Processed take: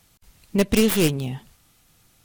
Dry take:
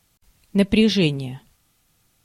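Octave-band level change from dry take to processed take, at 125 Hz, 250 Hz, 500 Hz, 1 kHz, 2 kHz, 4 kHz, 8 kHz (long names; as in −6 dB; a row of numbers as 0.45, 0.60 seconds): −2.0, −2.5, +0.5, +5.0, −1.5, −3.5, +11.5 decibels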